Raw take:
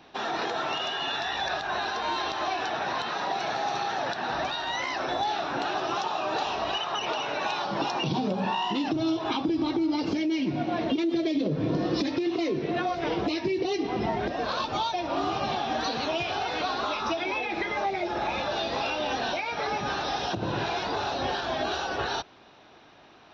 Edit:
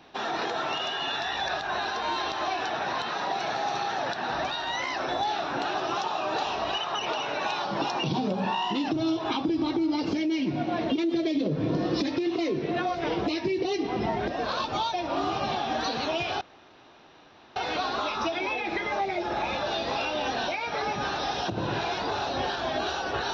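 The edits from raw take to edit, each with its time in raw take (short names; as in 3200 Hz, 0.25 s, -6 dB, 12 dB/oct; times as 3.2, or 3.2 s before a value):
16.41 insert room tone 1.15 s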